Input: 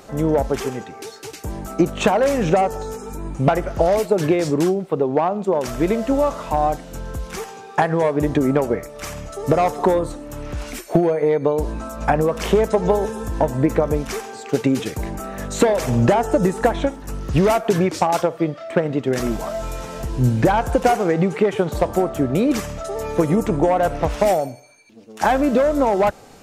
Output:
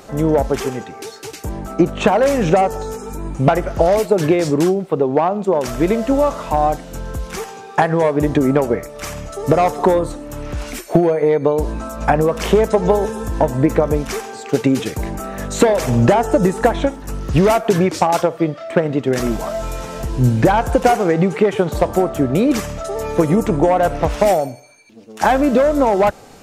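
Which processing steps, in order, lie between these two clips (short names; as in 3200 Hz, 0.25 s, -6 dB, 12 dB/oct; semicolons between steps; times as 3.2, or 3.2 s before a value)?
1.49–2.12 high shelf 4800 Hz -8.5 dB; gain +3 dB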